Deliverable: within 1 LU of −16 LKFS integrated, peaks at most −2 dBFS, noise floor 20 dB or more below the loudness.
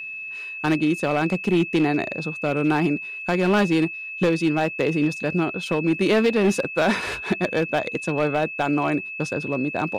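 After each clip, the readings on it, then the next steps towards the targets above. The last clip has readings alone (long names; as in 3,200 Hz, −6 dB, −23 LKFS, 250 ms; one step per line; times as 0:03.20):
share of clipped samples 1.2%; peaks flattened at −13.5 dBFS; interfering tone 2,600 Hz; level of the tone −31 dBFS; integrated loudness −22.5 LKFS; sample peak −13.5 dBFS; target loudness −16.0 LKFS
→ clipped peaks rebuilt −13.5 dBFS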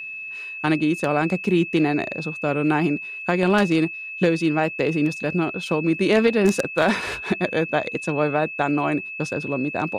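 share of clipped samples 0.0%; interfering tone 2,600 Hz; level of the tone −31 dBFS
→ notch filter 2,600 Hz, Q 30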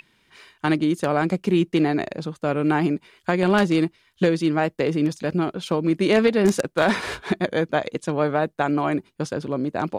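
interfering tone none found; integrated loudness −22.5 LKFS; sample peak −4.5 dBFS; target loudness −16.0 LKFS
→ level +6.5 dB
brickwall limiter −2 dBFS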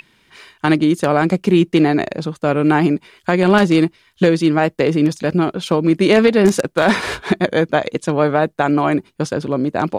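integrated loudness −16.5 LKFS; sample peak −2.0 dBFS; background noise floor −57 dBFS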